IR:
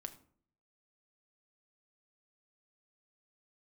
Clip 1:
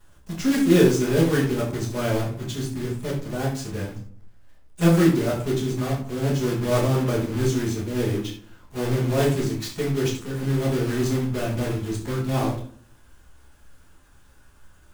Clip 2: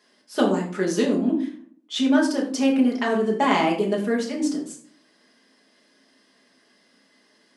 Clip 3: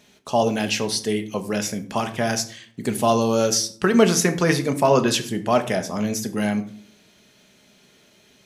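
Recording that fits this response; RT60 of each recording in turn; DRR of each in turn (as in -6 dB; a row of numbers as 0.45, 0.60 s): 3; 0.55, 0.55, 0.55 s; -12.5, -3.0, 7.0 dB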